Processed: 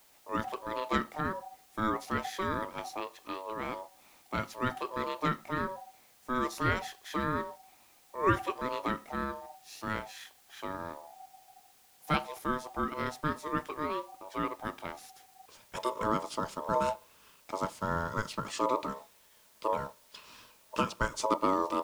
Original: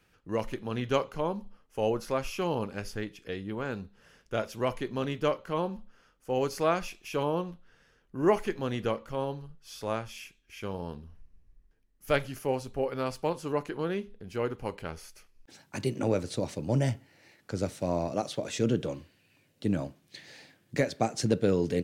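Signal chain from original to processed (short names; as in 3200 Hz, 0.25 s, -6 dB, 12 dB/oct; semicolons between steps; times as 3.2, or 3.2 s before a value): ring modulator 760 Hz; added noise white -63 dBFS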